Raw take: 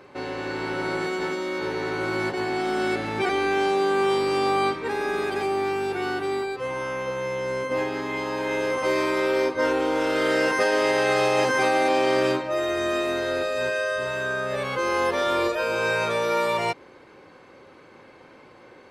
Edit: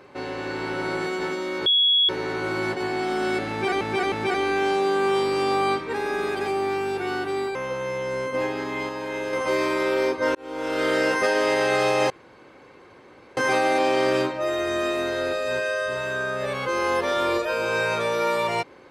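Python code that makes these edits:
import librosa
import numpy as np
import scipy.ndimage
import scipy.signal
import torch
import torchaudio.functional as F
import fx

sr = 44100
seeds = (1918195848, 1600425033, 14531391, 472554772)

y = fx.edit(x, sr, fx.insert_tone(at_s=1.66, length_s=0.43, hz=3350.0, db=-15.5),
    fx.repeat(start_s=3.07, length_s=0.31, count=3),
    fx.cut(start_s=6.5, length_s=0.42),
    fx.clip_gain(start_s=8.26, length_s=0.44, db=-3.5),
    fx.fade_in_span(start_s=9.72, length_s=0.49),
    fx.insert_room_tone(at_s=11.47, length_s=1.27), tone=tone)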